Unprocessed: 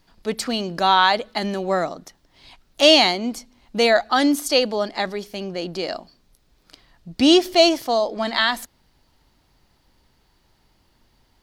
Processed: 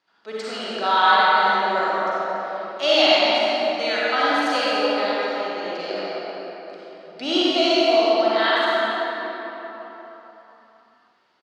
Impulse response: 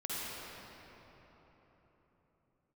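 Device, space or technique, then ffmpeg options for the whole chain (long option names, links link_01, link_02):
station announcement: -filter_complex "[0:a]asettb=1/sr,asplit=3[link_01][link_02][link_03];[link_01]atrim=end=3.124[link_04];[link_02]atrim=start=3.12:end=4.11,asetpts=PTS-STARTPTS,afade=type=in:duration=0.004:curve=qsin,afade=type=out:start_time=0.986:duration=0.004:curve=qsin,equalizer=frequency=640:width_type=o:width=1.5:gain=-9[link_05];[link_03]atrim=start=4.106[link_06];[link_04][link_05]acrossfade=duration=0.004:curve1=hsin:curve2=qsin[link_07];[link_07][link_06]acrossfade=duration=0.004:curve1=qsin:curve2=hsin,highpass=440,lowpass=4700,equalizer=frequency=1400:width_type=o:width=0.35:gain=6,aecho=1:1:40.82|230.3:0.355|0.282[link_08];[1:a]atrim=start_sample=2205[link_09];[link_08][link_09]afir=irnorm=-1:irlink=0,volume=-3.5dB"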